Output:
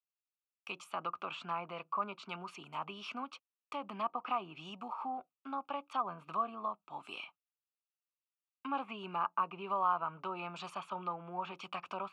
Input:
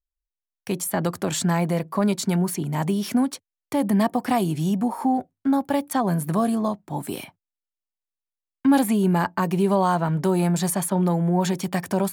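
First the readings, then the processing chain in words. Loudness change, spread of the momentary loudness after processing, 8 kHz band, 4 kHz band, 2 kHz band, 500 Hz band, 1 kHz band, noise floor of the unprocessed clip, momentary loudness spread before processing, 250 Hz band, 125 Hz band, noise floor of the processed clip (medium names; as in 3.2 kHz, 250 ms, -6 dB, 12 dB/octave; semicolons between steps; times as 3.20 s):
-16.5 dB, 11 LU, under -30 dB, -12.5 dB, -12.5 dB, -19.5 dB, -9.0 dB, under -85 dBFS, 7 LU, -27.5 dB, -30.0 dB, under -85 dBFS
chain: two resonant band-passes 1.8 kHz, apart 1.1 oct; low-pass that closes with the level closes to 1.8 kHz, closed at -36 dBFS; trim +1.5 dB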